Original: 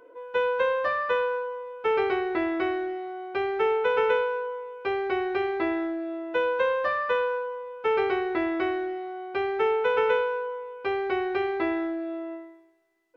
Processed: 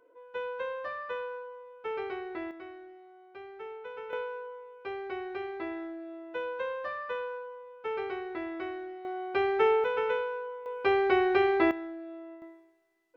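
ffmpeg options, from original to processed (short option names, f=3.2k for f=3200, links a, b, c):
-af "asetnsamples=n=441:p=0,asendcmd='2.51 volume volume -18.5dB;4.13 volume volume -10dB;9.05 volume volume 0dB;9.84 volume volume -6.5dB;10.66 volume volume 2.5dB;11.71 volume volume -10dB;12.42 volume volume -2dB',volume=-11dB"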